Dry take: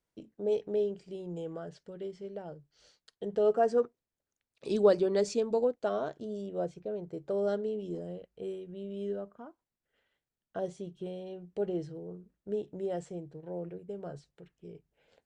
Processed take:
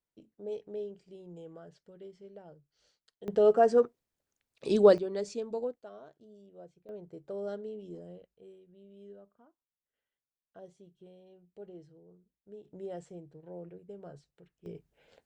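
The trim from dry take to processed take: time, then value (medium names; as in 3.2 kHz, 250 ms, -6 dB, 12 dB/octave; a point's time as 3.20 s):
-8.5 dB
from 3.28 s +3.5 dB
from 4.98 s -6.5 dB
from 5.81 s -17 dB
from 6.89 s -7 dB
from 8.34 s -15 dB
from 12.65 s -6 dB
from 14.66 s +4 dB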